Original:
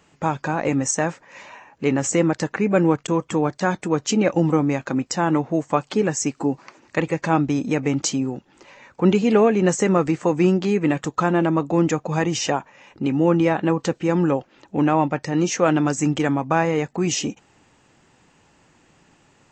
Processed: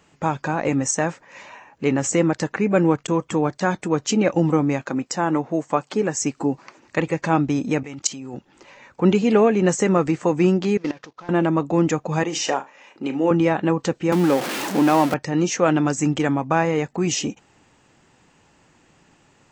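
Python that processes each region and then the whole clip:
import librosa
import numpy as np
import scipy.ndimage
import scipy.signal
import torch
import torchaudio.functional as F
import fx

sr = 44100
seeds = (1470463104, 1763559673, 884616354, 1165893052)

y = fx.chain(x, sr, fx.highpass(hz=190.0, slope=6),
    fx.dynamic_eq(hz=3300.0, q=1.1, threshold_db=-39.0, ratio=4.0, max_db=-4), at=(4.82, 6.15))
y = fx.chain(y, sr, fx.tilt_shelf(db=-4.5, hz=790.0),
    fx.level_steps(step_db=17), at=(7.83, 8.34))
y = fx.chain(y, sr, fx.cvsd(bps=32000),
    fx.level_steps(step_db=19),
    fx.bass_treble(bass_db=-10, treble_db=1), at=(10.77, 11.29))
y = fx.chain(y, sr, fx.highpass(hz=300.0, slope=12),
    fx.room_flutter(wall_m=6.3, rt60_s=0.2), at=(12.23, 13.31))
y = fx.chain(y, sr, fx.zero_step(step_db=-21.0),
    fx.highpass(hz=170.0, slope=24), at=(14.12, 15.14))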